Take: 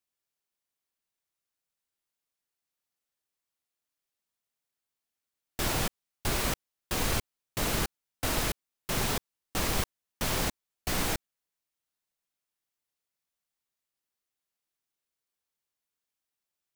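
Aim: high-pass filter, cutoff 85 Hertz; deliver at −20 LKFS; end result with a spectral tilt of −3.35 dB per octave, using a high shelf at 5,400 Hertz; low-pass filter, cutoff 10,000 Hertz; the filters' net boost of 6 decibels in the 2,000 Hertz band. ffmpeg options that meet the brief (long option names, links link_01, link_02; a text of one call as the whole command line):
ffmpeg -i in.wav -af "highpass=85,lowpass=10000,equalizer=frequency=2000:width_type=o:gain=8.5,highshelf=frequency=5400:gain=-8,volume=11.5dB" out.wav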